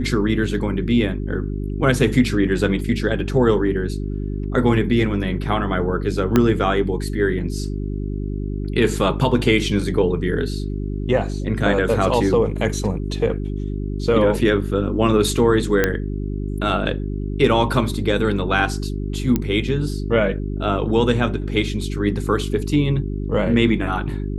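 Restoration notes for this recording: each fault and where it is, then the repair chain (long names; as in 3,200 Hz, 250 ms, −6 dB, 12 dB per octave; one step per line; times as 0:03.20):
mains hum 50 Hz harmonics 8 −25 dBFS
0:06.36: click −3 dBFS
0:15.84: click −3 dBFS
0:19.36: click −7 dBFS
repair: click removal
hum removal 50 Hz, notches 8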